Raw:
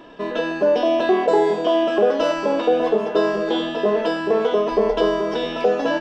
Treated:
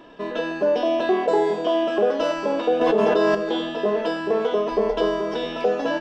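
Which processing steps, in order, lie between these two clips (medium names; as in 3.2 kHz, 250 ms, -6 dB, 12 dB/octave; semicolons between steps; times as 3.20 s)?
2.81–3.35 s: level flattener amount 100%; trim -3 dB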